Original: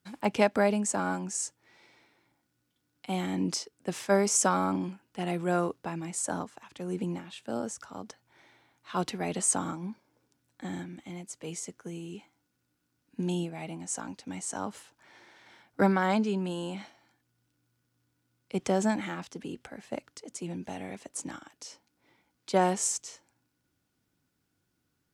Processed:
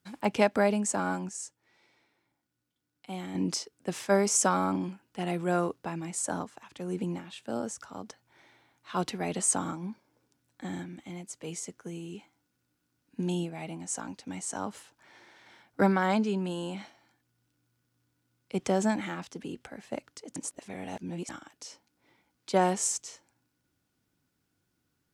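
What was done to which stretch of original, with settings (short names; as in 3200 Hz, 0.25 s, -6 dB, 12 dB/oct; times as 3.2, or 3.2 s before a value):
1.29–3.35 gain -6.5 dB
20.36–21.29 reverse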